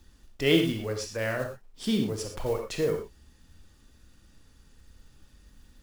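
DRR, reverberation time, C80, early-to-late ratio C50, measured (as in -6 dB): 3.5 dB, no single decay rate, 9.0 dB, 6.0 dB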